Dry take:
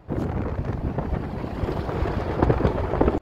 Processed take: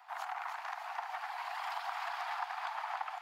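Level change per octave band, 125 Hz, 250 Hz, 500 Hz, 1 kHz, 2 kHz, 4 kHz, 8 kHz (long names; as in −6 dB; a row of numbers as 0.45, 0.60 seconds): below −40 dB, below −40 dB, −24.5 dB, −5.0 dB, −3.0 dB, −2.0 dB, can't be measured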